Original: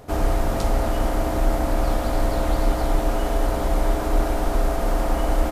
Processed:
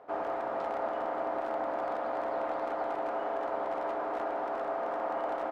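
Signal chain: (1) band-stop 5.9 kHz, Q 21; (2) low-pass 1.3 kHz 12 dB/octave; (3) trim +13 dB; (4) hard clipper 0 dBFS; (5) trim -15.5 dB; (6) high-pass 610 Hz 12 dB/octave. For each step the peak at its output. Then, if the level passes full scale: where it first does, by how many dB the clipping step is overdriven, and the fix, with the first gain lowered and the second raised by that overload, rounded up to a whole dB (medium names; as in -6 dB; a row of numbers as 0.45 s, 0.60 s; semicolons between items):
-8.5 dBFS, -8.5 dBFS, +4.5 dBFS, 0.0 dBFS, -15.5 dBFS, -21.5 dBFS; step 3, 4.5 dB; step 3 +8 dB, step 5 -10.5 dB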